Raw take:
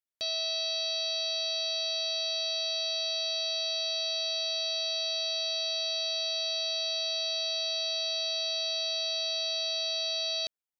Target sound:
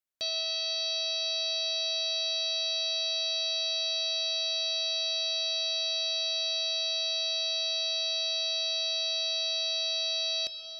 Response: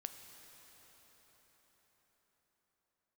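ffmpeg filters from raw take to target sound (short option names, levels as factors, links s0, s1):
-filter_complex "[1:a]atrim=start_sample=2205[s0];[0:a][s0]afir=irnorm=-1:irlink=0,volume=1.68"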